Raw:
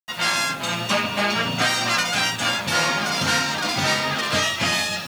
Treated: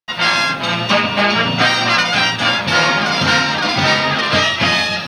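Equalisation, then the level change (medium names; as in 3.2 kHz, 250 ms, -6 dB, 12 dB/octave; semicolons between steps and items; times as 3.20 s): Savitzky-Golay filter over 15 samples; +7.5 dB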